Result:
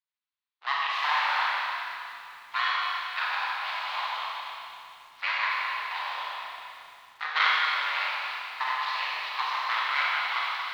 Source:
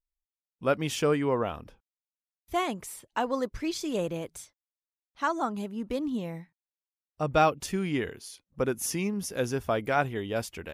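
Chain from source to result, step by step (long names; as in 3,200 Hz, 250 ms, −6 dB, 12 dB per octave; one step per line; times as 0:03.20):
sub-harmonics by changed cycles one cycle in 3, muted
full-wave rectification
Chebyshev band-pass filter 970–4,200 Hz, order 3
four-comb reverb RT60 2.6 s, combs from 30 ms, DRR −5 dB
feedback echo at a low word length 274 ms, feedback 35%, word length 9 bits, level −12 dB
level +5 dB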